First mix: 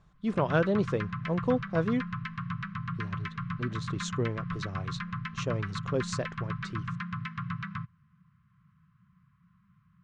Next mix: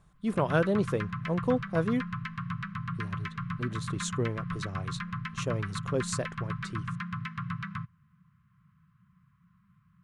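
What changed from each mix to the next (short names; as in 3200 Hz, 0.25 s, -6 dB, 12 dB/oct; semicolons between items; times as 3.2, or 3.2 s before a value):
master: remove LPF 6500 Hz 24 dB/oct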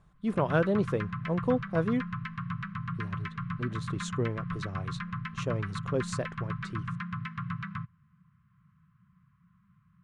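master: add LPF 3500 Hz 6 dB/oct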